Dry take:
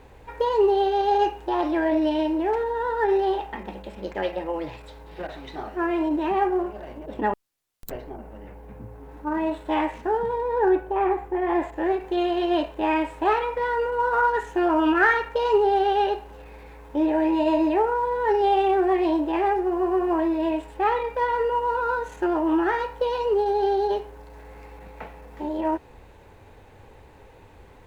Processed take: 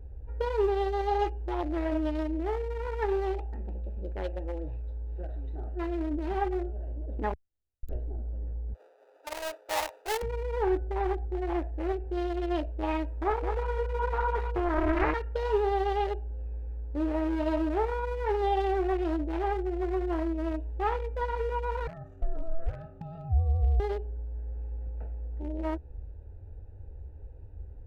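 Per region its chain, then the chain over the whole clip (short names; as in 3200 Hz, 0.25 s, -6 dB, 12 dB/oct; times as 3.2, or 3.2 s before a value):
8.74–10.22 half-waves squared off + steep high-pass 470 Hz
13.21–15.14 inverse Chebyshev low-pass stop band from 2800 Hz + echo 0.209 s -5.5 dB + Doppler distortion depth 0.53 ms
21.87–23.8 ring modulator 330 Hz + compressor 2.5:1, threshold -27 dBFS
whole clip: Wiener smoothing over 41 samples; resonant low shelf 110 Hz +13.5 dB, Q 1.5; gain -5.5 dB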